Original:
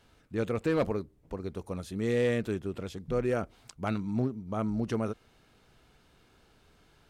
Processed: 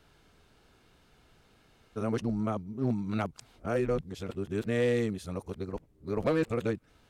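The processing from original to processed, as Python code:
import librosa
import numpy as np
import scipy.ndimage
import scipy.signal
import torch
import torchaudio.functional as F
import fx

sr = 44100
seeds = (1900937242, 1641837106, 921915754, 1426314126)

y = x[::-1].copy()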